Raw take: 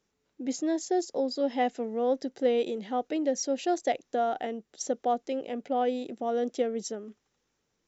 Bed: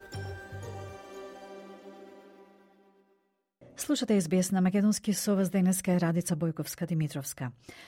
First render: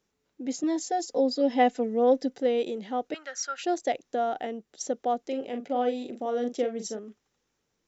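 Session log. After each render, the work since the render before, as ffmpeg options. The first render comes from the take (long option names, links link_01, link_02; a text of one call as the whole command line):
ffmpeg -i in.wav -filter_complex "[0:a]asettb=1/sr,asplit=3[link_01][link_02][link_03];[link_01]atrim=end=0.634[link_04];[link_02]atrim=start=0.63:end=2.38,asetpts=PTS-STARTPTS,afade=type=in:duration=0.004:curve=qsin,afade=type=out:start_time=1.746:duration=0.004:curve=qsin,aecho=1:1:4:0.92,atrim=end_sample=77175[link_05];[link_03]atrim=start=2.376[link_06];[link_04][link_05]acrossfade=duration=0.004:curve1=hsin:curve2=qsin[link_07];[link_07][link_06]acrossfade=duration=0.004:curve1=qsin:curve2=hsin,asettb=1/sr,asplit=3[link_08][link_09][link_10];[link_08]atrim=end=3.144[link_11];[link_09]atrim=start=3.14:end=3.63,asetpts=PTS-STARTPTS,afade=type=in:duration=0.004:curve=qsin,afade=type=out:start_time=0.486:duration=0.004:curve=qsin,highpass=frequency=1400:width_type=q:width=16[link_12];[link_10]atrim=start=3.626[link_13];[link_11][link_12]acrossfade=duration=0.004:curve1=hsin:curve2=qsin[link_14];[link_14][link_13]acrossfade=duration=0.004:curve1=qsin:curve2=hsin,asettb=1/sr,asplit=3[link_15][link_16][link_17];[link_15]atrim=end=5.224[link_18];[link_16]atrim=start=5.22:end=6.99,asetpts=PTS-STARTPTS,afade=type=in:duration=0.004:curve=qsin,afade=type=out:start_time=1.766:duration=0.004:curve=qsin,asplit=2[link_19][link_20];[link_20]adelay=41,volume=-7.5dB[link_21];[link_19][link_21]amix=inputs=2:normalize=0,atrim=end_sample=78057[link_22];[link_17]atrim=start=6.986[link_23];[link_18][link_22]acrossfade=duration=0.004:curve1=hsin:curve2=qsin[link_24];[link_24][link_23]acrossfade=duration=0.004:curve1=qsin:curve2=hsin" out.wav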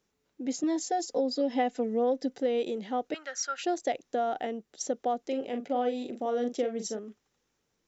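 ffmpeg -i in.wav -af "acompressor=threshold=-24dB:ratio=5" out.wav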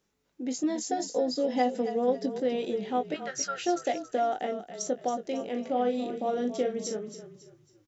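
ffmpeg -i in.wav -filter_complex "[0:a]asplit=2[link_01][link_02];[link_02]adelay=20,volume=-7.5dB[link_03];[link_01][link_03]amix=inputs=2:normalize=0,asplit=5[link_04][link_05][link_06][link_07][link_08];[link_05]adelay=275,afreqshift=-32,volume=-11dB[link_09];[link_06]adelay=550,afreqshift=-64,volume=-20.4dB[link_10];[link_07]adelay=825,afreqshift=-96,volume=-29.7dB[link_11];[link_08]adelay=1100,afreqshift=-128,volume=-39.1dB[link_12];[link_04][link_09][link_10][link_11][link_12]amix=inputs=5:normalize=0" out.wav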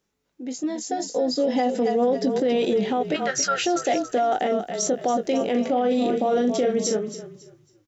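ffmpeg -i in.wav -af "dynaudnorm=framelen=410:gausssize=7:maxgain=13dB,alimiter=limit=-14.5dB:level=0:latency=1:release=11" out.wav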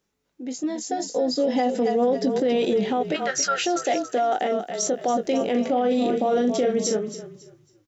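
ffmpeg -i in.wav -filter_complex "[0:a]asettb=1/sr,asplit=3[link_01][link_02][link_03];[link_01]atrim=end=3.124[link_04];[link_02]atrim=start=3.12:end=5.08,asetpts=PTS-STARTPTS,afade=type=in:duration=0.004:curve=qsin,afade=type=out:start_time=1.956:duration=0.004:curve=qsin,highpass=frequency=230:poles=1[link_05];[link_03]atrim=start=5.076[link_06];[link_04][link_05]acrossfade=duration=0.004:curve1=hsin:curve2=qsin[link_07];[link_07][link_06]acrossfade=duration=0.004:curve1=qsin:curve2=hsin" out.wav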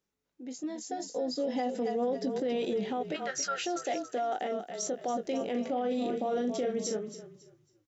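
ffmpeg -i in.wav -af "volume=-9.5dB" out.wav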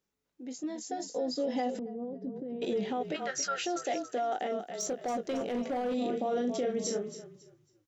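ffmpeg -i in.wav -filter_complex "[0:a]asettb=1/sr,asplit=3[link_01][link_02][link_03];[link_01]atrim=end=1.794[link_04];[link_02]atrim=start=1.79:end=2.62,asetpts=PTS-STARTPTS,afade=type=in:duration=0.004:curve=qsin,afade=type=out:start_time=0.826:duration=0.004:curve=qsin,bandpass=frequency=120:width_type=q:width=0.82[link_05];[link_03]atrim=start=2.616[link_06];[link_04][link_05]acrossfade=duration=0.004:curve1=hsin:curve2=qsin[link_07];[link_07][link_06]acrossfade=duration=0.004:curve1=qsin:curve2=hsin,asettb=1/sr,asplit=3[link_08][link_09][link_10];[link_08]atrim=end=4.694[link_11];[link_09]atrim=start=4.69:end=5.94,asetpts=PTS-STARTPTS,afade=type=in:duration=0.004:curve=qsin,afade=type=out:start_time=1.246:duration=0.004:curve=qsin,asoftclip=type=hard:threshold=-28dB[link_12];[link_10]atrim=start=5.936[link_13];[link_11][link_12]acrossfade=duration=0.004:curve1=hsin:curve2=qsin[link_14];[link_14][link_13]acrossfade=duration=0.004:curve1=qsin:curve2=hsin,asettb=1/sr,asplit=3[link_15][link_16][link_17];[link_15]atrim=end=6.814[link_18];[link_16]atrim=start=6.81:end=7.24,asetpts=PTS-STARTPTS,afade=type=in:duration=0.004:curve=qsin,afade=type=out:start_time=0.426:duration=0.004:curve=qsin,asplit=2[link_19][link_20];[link_20]adelay=30,volume=-7dB[link_21];[link_19][link_21]amix=inputs=2:normalize=0,atrim=end_sample=18963[link_22];[link_17]atrim=start=7.236[link_23];[link_18][link_22]acrossfade=duration=0.004:curve1=hsin:curve2=qsin[link_24];[link_24][link_23]acrossfade=duration=0.004:curve1=qsin:curve2=hsin" out.wav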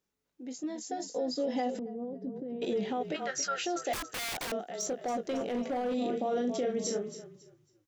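ffmpeg -i in.wav -filter_complex "[0:a]asettb=1/sr,asplit=3[link_01][link_02][link_03];[link_01]atrim=end=3.934[link_04];[link_02]atrim=start=3.93:end=4.52,asetpts=PTS-STARTPTS,afade=type=in:duration=0.004:curve=qsin,afade=type=out:start_time=0.586:duration=0.004:curve=qsin,aeval=exprs='(mod(37.6*val(0)+1,2)-1)/37.6':channel_layout=same[link_05];[link_03]atrim=start=4.516[link_06];[link_04][link_05]acrossfade=duration=0.004:curve1=hsin:curve2=qsin[link_07];[link_07][link_06]acrossfade=duration=0.004:curve1=qsin:curve2=hsin" out.wav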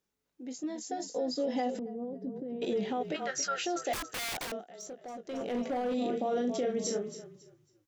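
ffmpeg -i in.wav -filter_complex "[0:a]asplit=3[link_01][link_02][link_03];[link_01]atrim=end=4.68,asetpts=PTS-STARTPTS,afade=type=out:start_time=4.39:duration=0.29:silence=0.316228[link_04];[link_02]atrim=start=4.68:end=5.23,asetpts=PTS-STARTPTS,volume=-10dB[link_05];[link_03]atrim=start=5.23,asetpts=PTS-STARTPTS,afade=type=in:duration=0.29:silence=0.316228[link_06];[link_04][link_05][link_06]concat=n=3:v=0:a=1" out.wav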